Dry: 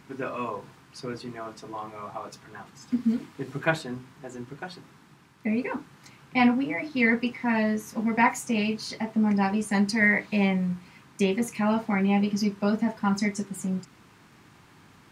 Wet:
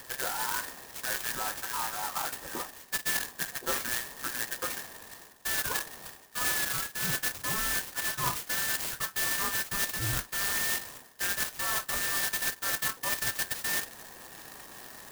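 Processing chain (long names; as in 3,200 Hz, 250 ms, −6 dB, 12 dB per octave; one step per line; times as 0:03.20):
frequency inversion band by band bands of 2,000 Hz
reversed playback
downward compressor 6 to 1, threshold −37 dBFS, peak gain reduction 19.5 dB
reversed playback
converter with an unsteady clock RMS 0.11 ms
level +7.5 dB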